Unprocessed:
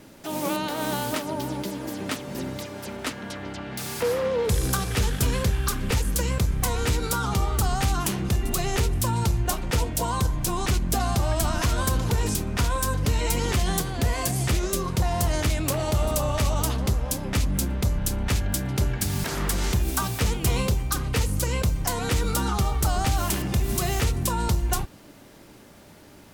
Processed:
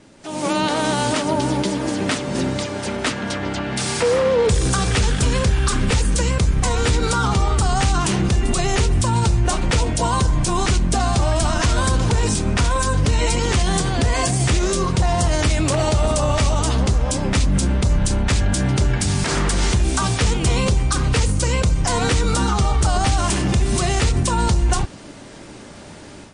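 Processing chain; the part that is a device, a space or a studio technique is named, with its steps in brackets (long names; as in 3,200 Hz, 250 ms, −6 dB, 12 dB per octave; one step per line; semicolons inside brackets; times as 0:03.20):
0:06.91–0:07.40: high-shelf EQ 7,800 Hz −5 dB
low-bitrate web radio (automatic gain control gain up to 11 dB; brickwall limiter −9.5 dBFS, peak gain reduction 5.5 dB; MP3 40 kbit/s 22,050 Hz)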